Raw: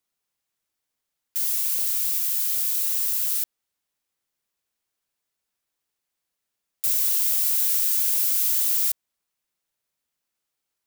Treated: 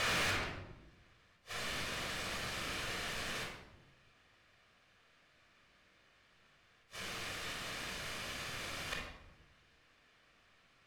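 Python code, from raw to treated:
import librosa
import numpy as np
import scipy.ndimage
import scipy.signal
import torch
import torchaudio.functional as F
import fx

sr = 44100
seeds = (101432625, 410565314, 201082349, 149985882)

y = x + 0.5 * 10.0 ** (-25.5 / 20.0) * np.sign(x)
y = scipy.signal.sosfilt(scipy.signal.butter(4, 1400.0, 'highpass', fs=sr, output='sos'), y)
y = fx.quant_dither(y, sr, seeds[0], bits=6, dither='triangular')
y = fx.echo_feedback(y, sr, ms=460, feedback_pct=31, wet_db=-10)
y = fx.over_compress(y, sr, threshold_db=-27.0, ratio=-1.0)
y = fx.gate_flip(y, sr, shuts_db=-18.0, range_db=-40)
y = scipy.signal.sosfilt(scipy.signal.butter(2, 2500.0, 'lowpass', fs=sr, output='sos'), y)
y = fx.room_shoebox(y, sr, seeds[1], volume_m3=3000.0, walls='furnished', distance_m=5.9)
y = np.clip(y, -10.0 ** (-35.0 / 20.0), 10.0 ** (-35.0 / 20.0))
y = F.gain(torch.from_numpy(y), 3.5).numpy()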